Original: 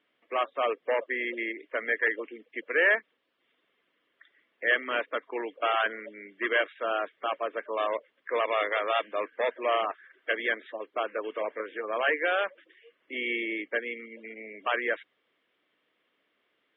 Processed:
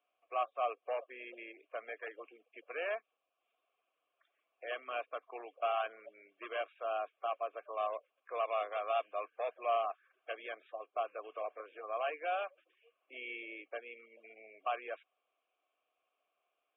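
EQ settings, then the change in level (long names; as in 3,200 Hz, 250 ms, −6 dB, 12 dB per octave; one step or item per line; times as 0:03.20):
high-pass filter 260 Hz 12 dB per octave
dynamic equaliser 780 Hz, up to −4 dB, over −37 dBFS, Q 0.99
formant filter a
+3.0 dB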